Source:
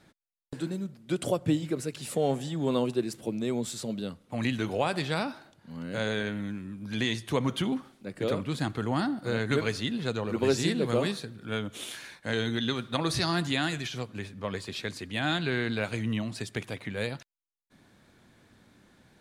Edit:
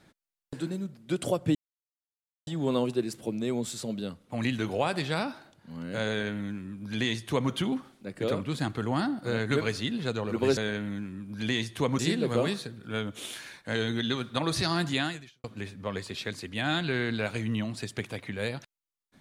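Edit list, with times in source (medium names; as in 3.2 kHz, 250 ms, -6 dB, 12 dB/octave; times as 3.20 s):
1.55–2.47 s: mute
6.09–7.51 s: copy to 10.57 s
13.59–14.02 s: fade out quadratic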